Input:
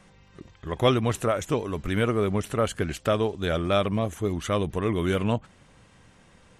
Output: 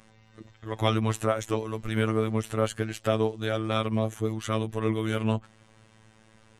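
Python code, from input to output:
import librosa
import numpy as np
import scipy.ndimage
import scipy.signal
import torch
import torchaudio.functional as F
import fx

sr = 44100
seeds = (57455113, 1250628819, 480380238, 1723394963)

y = fx.robotise(x, sr, hz=110.0)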